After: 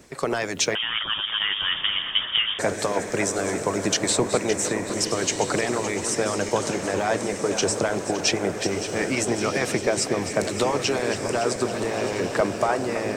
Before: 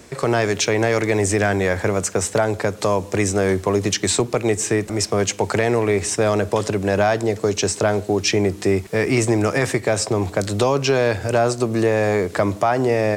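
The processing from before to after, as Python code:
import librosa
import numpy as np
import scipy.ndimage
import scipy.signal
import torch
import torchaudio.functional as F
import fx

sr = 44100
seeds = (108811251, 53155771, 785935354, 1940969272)

y = fx.reverse_delay_fb(x, sr, ms=282, feedback_pct=74, wet_db=-9.5)
y = fx.hpss(y, sr, part='harmonic', gain_db=-15)
y = fx.echo_diffused(y, sr, ms=1340, feedback_pct=40, wet_db=-8.5)
y = fx.freq_invert(y, sr, carrier_hz=3500, at=(0.75, 2.59))
y = F.gain(torch.from_numpy(y), -1.5).numpy()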